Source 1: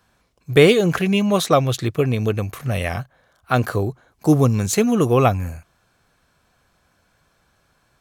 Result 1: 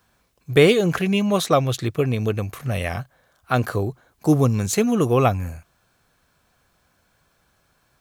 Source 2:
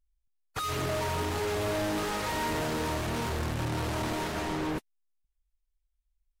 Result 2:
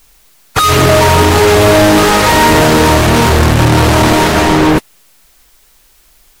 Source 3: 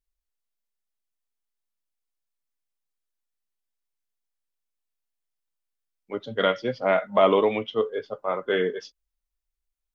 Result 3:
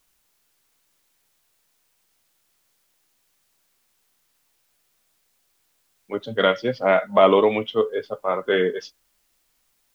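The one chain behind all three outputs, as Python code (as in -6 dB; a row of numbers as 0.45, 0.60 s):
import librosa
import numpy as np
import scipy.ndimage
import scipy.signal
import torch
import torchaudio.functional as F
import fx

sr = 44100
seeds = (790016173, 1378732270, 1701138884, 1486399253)

y = fx.quant_dither(x, sr, seeds[0], bits=12, dither='triangular')
y = y * 10.0 ** (-3 / 20.0) / np.max(np.abs(y))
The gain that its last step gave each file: -2.0, +23.5, +3.5 dB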